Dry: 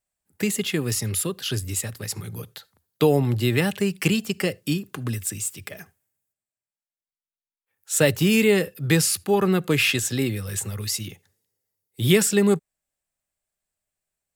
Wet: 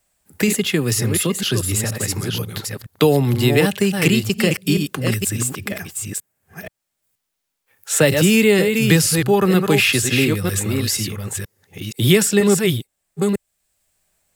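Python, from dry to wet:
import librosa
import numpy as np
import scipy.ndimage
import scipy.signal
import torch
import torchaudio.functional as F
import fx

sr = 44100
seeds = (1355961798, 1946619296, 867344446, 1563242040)

y = fx.reverse_delay(x, sr, ms=477, wet_db=-6.0)
y = fx.band_squash(y, sr, depth_pct=40)
y = F.gain(torch.from_numpy(y), 5.0).numpy()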